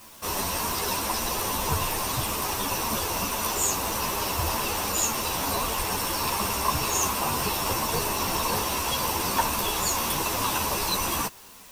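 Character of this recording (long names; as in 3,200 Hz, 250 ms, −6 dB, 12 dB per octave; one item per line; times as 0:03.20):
a quantiser's noise floor 8 bits, dither triangular
a shimmering, thickened sound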